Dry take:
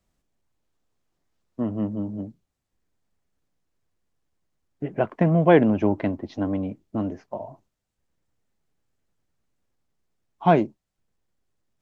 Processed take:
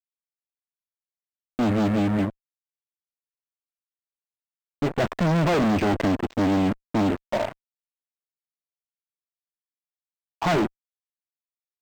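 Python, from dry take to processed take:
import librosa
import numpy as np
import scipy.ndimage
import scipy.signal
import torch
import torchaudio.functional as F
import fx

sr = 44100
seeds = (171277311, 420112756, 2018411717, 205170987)

y = fx.fuzz(x, sr, gain_db=38.0, gate_db=-39.0)
y = np.interp(np.arange(len(y)), np.arange(len(y))[::4], y[::4])
y = F.gain(torch.from_numpy(y), -6.0).numpy()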